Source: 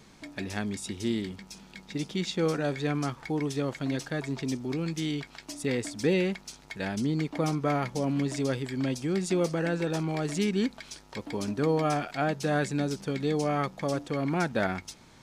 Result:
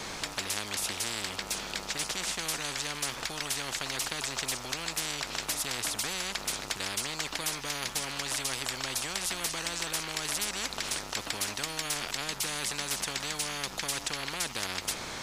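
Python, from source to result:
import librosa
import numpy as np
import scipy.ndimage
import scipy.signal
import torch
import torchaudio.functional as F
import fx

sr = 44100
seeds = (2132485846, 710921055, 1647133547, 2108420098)

y = fx.spectral_comp(x, sr, ratio=10.0)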